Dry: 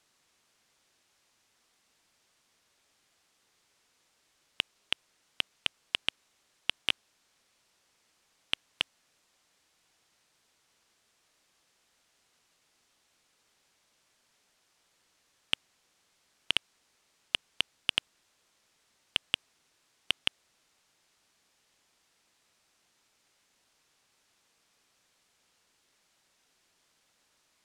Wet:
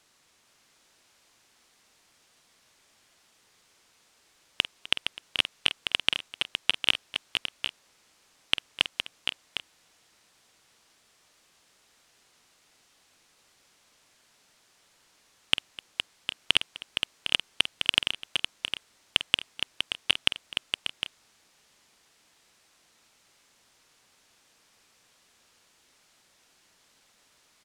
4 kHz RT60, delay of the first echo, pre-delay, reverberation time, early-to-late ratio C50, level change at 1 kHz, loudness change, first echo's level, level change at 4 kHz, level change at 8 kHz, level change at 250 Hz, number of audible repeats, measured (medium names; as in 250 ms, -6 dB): no reverb, 48 ms, no reverb, no reverb, no reverb, +7.5 dB, +5.0 dB, -13.0 dB, +7.5 dB, +7.5 dB, +7.5 dB, 5